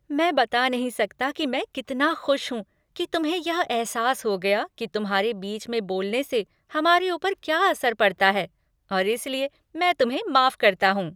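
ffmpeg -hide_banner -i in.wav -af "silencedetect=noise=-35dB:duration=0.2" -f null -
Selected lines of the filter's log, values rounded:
silence_start: 2.62
silence_end: 2.96 | silence_duration: 0.34
silence_start: 6.43
silence_end: 6.73 | silence_duration: 0.31
silence_start: 8.46
silence_end: 8.91 | silence_duration: 0.45
silence_start: 9.47
silence_end: 9.75 | silence_duration: 0.28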